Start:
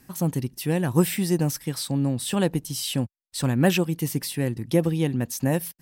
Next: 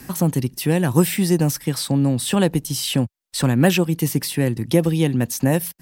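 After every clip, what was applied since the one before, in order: three bands compressed up and down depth 40%; trim +5 dB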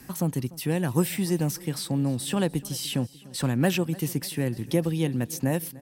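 feedback delay 296 ms, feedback 58%, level -21 dB; trim -7.5 dB

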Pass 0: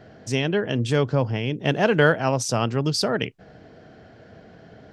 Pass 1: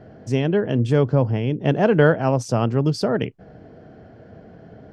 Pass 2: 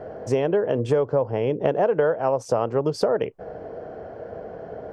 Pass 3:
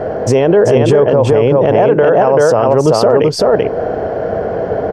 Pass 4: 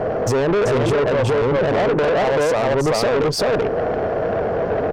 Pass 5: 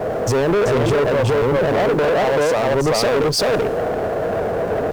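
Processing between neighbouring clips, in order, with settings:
tilt shelf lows +6.5 dB, about 1.4 kHz; band-stop 3.8 kHz, Q 22; trim -2 dB
graphic EQ 125/250/500/1000/4000 Hz -5/-5/+11/+7/-4 dB; compression 6:1, threshold -21 dBFS, peak gain reduction 16.5 dB; trim +2.5 dB
on a send: delay 386 ms -3.5 dB; on the sum: loudness maximiser +18.5 dB; trim -1 dB
valve stage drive 15 dB, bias 0.35
jump at every zero crossing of -31 dBFS; three bands expanded up and down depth 40%

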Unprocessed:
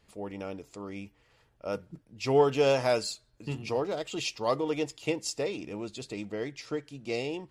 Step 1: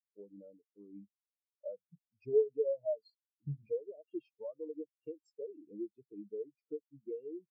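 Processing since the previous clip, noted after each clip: in parallel at -2 dB: peak limiter -23 dBFS, peak gain reduction 10.5 dB; on the sum: compression 12:1, threshold -31 dBFS, peak gain reduction 16.5 dB; spectral contrast expander 4:1; trim +1 dB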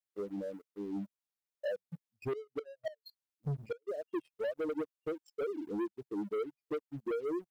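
inverted gate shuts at -30 dBFS, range -30 dB; compression 1.5:1, threshold -48 dBFS, peak gain reduction 5 dB; waveshaping leveller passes 3; trim +4.5 dB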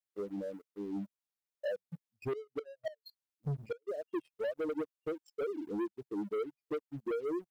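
no audible change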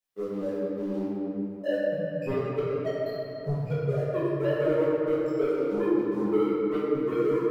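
simulated room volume 170 m³, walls hard, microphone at 1.5 m

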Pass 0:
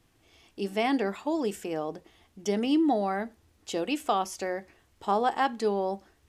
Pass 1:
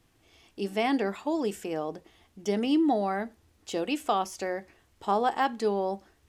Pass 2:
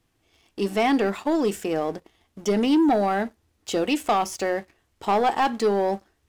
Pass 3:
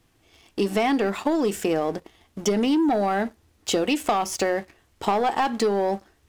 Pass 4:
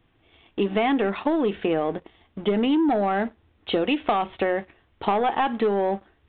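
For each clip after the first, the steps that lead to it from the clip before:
de-esser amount 80%
waveshaping leveller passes 2
compression, threshold -26 dBFS, peak gain reduction 9 dB; trim +6.5 dB
resampled via 8 kHz

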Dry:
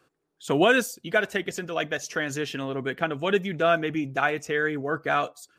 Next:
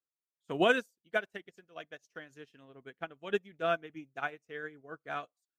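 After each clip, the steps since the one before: upward expansion 2.5:1, over -39 dBFS; trim -4.5 dB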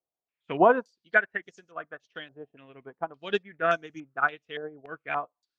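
step-sequenced low-pass 3.5 Hz 700–6200 Hz; trim +3.5 dB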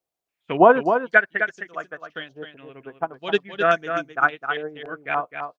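delay 259 ms -7.5 dB; trim +6 dB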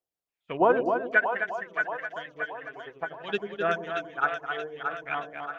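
phaser 0.56 Hz, delay 3 ms, feedback 32%; two-band feedback delay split 570 Hz, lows 93 ms, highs 627 ms, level -6 dB; trim -8 dB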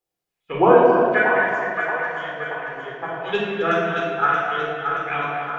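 simulated room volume 1500 m³, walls mixed, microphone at 4 m; trim +1.5 dB

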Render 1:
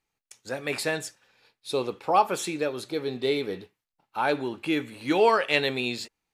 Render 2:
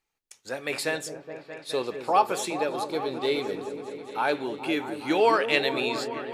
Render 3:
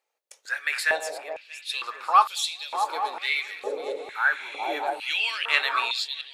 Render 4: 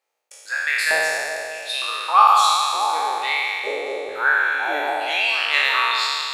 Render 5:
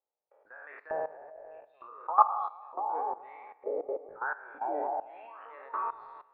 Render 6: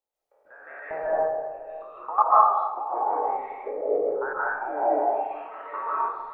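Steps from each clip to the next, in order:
peaking EQ 120 Hz -6.5 dB 2 oct; delay with an opening low-pass 210 ms, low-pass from 400 Hz, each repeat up 1 oct, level -6 dB
chunks repeated in reverse 327 ms, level -12 dB; spectral replace 3.99–4.73 s, 2–11 kHz both; step-sequenced high-pass 2.2 Hz 550–3600 Hz
spectral sustain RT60 2.26 s
reverb removal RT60 1.7 s; low-pass 1 kHz 24 dB/octave; level held to a coarse grid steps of 16 dB
bass shelf 120 Hz +7 dB; reverberation RT60 0.90 s, pre-delay 110 ms, DRR -7.5 dB

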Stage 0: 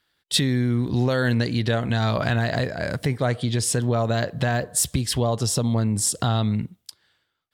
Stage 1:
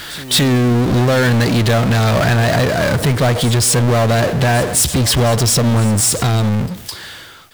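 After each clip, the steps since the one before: fade out at the end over 1.79 s; power-law waveshaper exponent 0.35; pre-echo 213 ms -18 dB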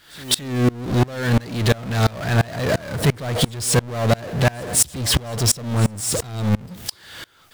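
in parallel at -3 dB: peak limiter -14.5 dBFS, peak gain reduction 7.5 dB; on the sum: sawtooth tremolo in dB swelling 2.9 Hz, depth 27 dB; trim -2 dB

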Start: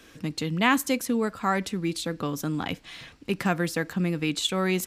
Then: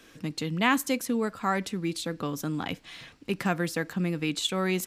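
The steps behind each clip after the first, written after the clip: peaking EQ 60 Hz -12 dB 0.52 oct; trim -2 dB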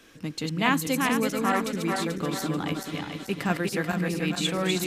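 backward echo that repeats 218 ms, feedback 67%, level -3 dB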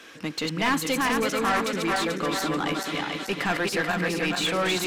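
overdrive pedal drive 23 dB, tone 3.8 kHz, clips at -9 dBFS; trim -6 dB

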